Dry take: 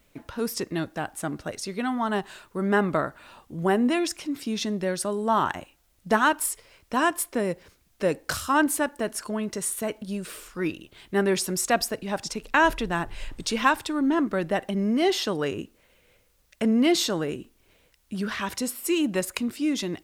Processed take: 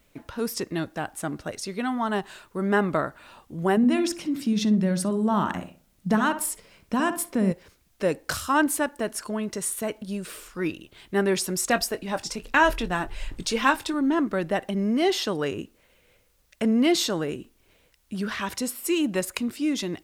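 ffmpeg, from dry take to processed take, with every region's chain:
-filter_complex "[0:a]asettb=1/sr,asplit=3[a][b][c];[a]atrim=end=3.774[d];[b]atrim=start=3.77:end=7.52,asetpts=PTS-STARTPTS,afade=t=in:d=0.004:c=qsin,afade=t=out:st=3.746:d=0.004:c=qsin,equalizer=f=190:t=o:w=0.78:g=13.5,acompressor=threshold=-25dB:ratio=1.5:attack=3.2:release=140:knee=1:detection=peak,asplit=2[e][f];[f]adelay=61,lowpass=f=1.3k:p=1,volume=-8dB,asplit=2[g][h];[h]adelay=61,lowpass=f=1.3k:p=1,volume=0.37,asplit=2[i][j];[j]adelay=61,lowpass=f=1.3k:p=1,volume=0.37,asplit=2[k][l];[l]adelay=61,lowpass=f=1.3k:p=1,volume=0.37[m];[e][g][i][k][m]amix=inputs=5:normalize=0,atrim=end_sample=165375[n];[c]atrim=start=7.516[o];[d][n]acrossfade=d=0.004:c1=hsin:c2=qsin[p];[p][o]acrossfade=d=0.004:c1=qsin:c2=hsin,asettb=1/sr,asplit=3[q][r][s];[q]atrim=end=11.684[t];[r]atrim=start=11.68:end=13.94,asetpts=PTS-STARTPTS,afade=t=in:d=0.004:c=qsin,afade=t=out:st=2.256:d=0.004:c=qsin,aphaser=in_gain=1:out_gain=1:delay=4.2:decay=0.33:speed=1.2:type=triangular,asplit=2[u][v];[v]adelay=22,volume=-12dB[w];[u][w]amix=inputs=2:normalize=0,atrim=end_sample=99666[x];[s]atrim=start=13.936[y];[t][x]acrossfade=d=0.004:c1=hsin:c2=qsin[z];[z][y]acrossfade=d=0.004:c1=qsin:c2=hsin"

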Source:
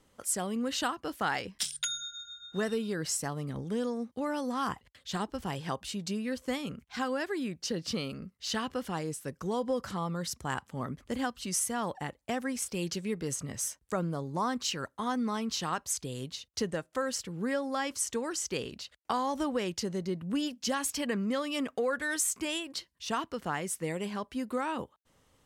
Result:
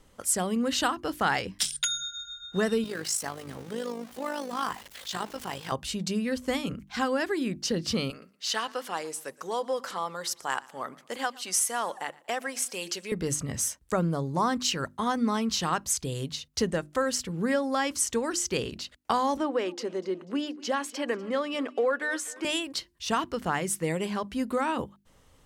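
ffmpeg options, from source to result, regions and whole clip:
-filter_complex "[0:a]asettb=1/sr,asplit=3[a][b][c];[a]atrim=end=2.844[d];[b]atrim=start=2.84:end=5.72,asetpts=PTS-STARTPTS,afade=t=in:d=0.004:c=qsin,afade=t=out:st=2.876:d=0.004:c=qsin,aeval=exprs='val(0)+0.5*0.00841*sgn(val(0))':c=same,highpass=f=570:p=1,tremolo=f=52:d=0.621[e];[c]atrim=start=5.716[f];[d][e]acrossfade=d=0.004:c1=hsin:c2=qsin[g];[g][f]acrossfade=d=0.004:c1=qsin:c2=hsin,asettb=1/sr,asplit=3[h][i][j];[h]atrim=end=8.104[k];[i]atrim=start=8.1:end=13.12,asetpts=PTS-STARTPTS,afade=t=in:d=0.004:c=qsin,afade=t=out:st=5.016:d=0.004:c=qsin,highpass=540,aecho=1:1:117|234|351:0.075|0.03|0.012,atrim=end_sample=221382[l];[j]atrim=start=13.116[m];[k][l]acrossfade=d=0.004:c1=hsin:c2=qsin[n];[n][m]acrossfade=d=0.004:c1=qsin:c2=hsin,asettb=1/sr,asplit=3[o][p][q];[o]atrim=end=19.374[r];[p]atrim=start=19.37:end=22.45,asetpts=PTS-STARTPTS,afade=t=in:d=0.004:c=qsin,afade=t=out:st=3.076:d=0.004:c=qsin,highpass=f=290:w=0.5412,highpass=f=290:w=1.3066,aemphasis=mode=reproduction:type=75kf,aecho=1:1:245|490|735:0.0944|0.0406|0.0175,atrim=end_sample=135828[s];[q]atrim=start=22.446[t];[r][s]acrossfade=d=0.004:c1=hsin:c2=qsin[u];[u][t]acrossfade=d=0.004:c1=qsin:c2=hsin,lowshelf=f=70:g=10,bandreject=f=50:t=h:w=6,bandreject=f=100:t=h:w=6,bandreject=f=150:t=h:w=6,bandreject=f=200:t=h:w=6,bandreject=f=250:t=h:w=6,bandreject=f=300:t=h:w=6,bandreject=f=350:t=h:w=6,volume=5dB"

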